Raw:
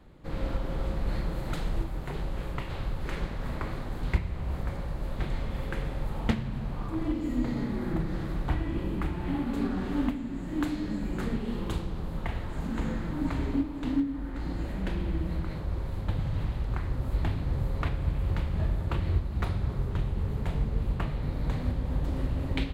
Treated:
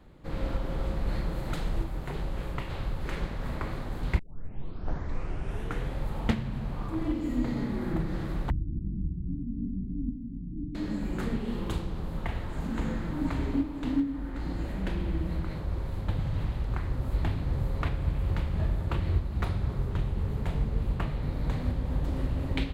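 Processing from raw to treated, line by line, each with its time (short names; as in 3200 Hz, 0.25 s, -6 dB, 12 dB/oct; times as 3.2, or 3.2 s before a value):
4.19 tape start 1.76 s
8.5–10.75 inverse Chebyshev low-pass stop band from 610 Hz, stop band 50 dB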